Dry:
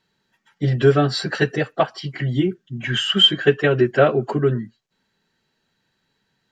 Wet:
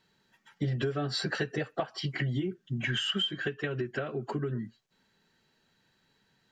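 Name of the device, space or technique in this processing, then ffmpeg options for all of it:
serial compression, leveller first: -filter_complex "[0:a]acompressor=threshold=-17dB:ratio=2.5,acompressor=threshold=-29dB:ratio=5,asettb=1/sr,asplit=3[a][b][c];[a]atrim=end=3.334[d];[b]atrim=start=3.33:end=4.53,asetpts=PTS-STARTPTS,afade=t=in:d=0.004:c=qsin,afade=t=out:st=1.196:d=0.004:c=qsin,equalizer=f=620:w=1.1:g=-5[e];[c]atrim=start=4.526[f];[d][e]acrossfade=d=0.004:c1=hsin:c2=qsin[g];[g][f]acrossfade=d=0.004:c1=qsin:c2=hsin"

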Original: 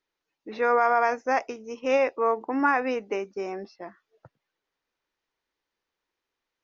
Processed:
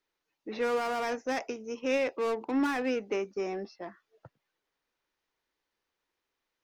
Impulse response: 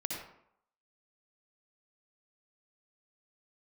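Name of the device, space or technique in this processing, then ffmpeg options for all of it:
one-band saturation: -filter_complex "[0:a]acrossover=split=440|2200[a][b][c];[b]asoftclip=type=tanh:threshold=-36dB[d];[a][d][c]amix=inputs=3:normalize=0"

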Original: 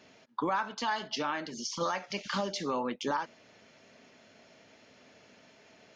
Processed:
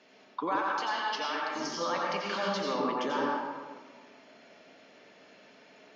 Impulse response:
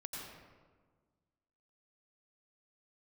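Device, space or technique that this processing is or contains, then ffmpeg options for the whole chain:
supermarket ceiling speaker: -filter_complex "[0:a]highpass=250,lowpass=5.4k[a];[1:a]atrim=start_sample=2205[b];[a][b]afir=irnorm=-1:irlink=0,asettb=1/sr,asplit=3[c][d][e];[c]atrim=end=0.584[f];[d]atrim=start=0.58:end=1.56,asetpts=PTS-STARTPTS,afade=t=in:d=0.004:c=qsin,afade=t=out:st=0.976:d=0.004:c=qsin,highpass=f=620:p=1[g];[e]atrim=start=1.556[h];[f][g]acrossfade=d=0.004:c1=hsin:c2=qsin[i];[i][h]acrossfade=d=0.004:c1=qsin:c2=hsin,volume=4.5dB"

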